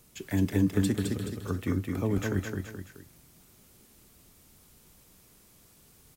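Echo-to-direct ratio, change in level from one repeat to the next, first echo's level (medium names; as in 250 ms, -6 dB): -2.5 dB, -7.0 dB, -3.5 dB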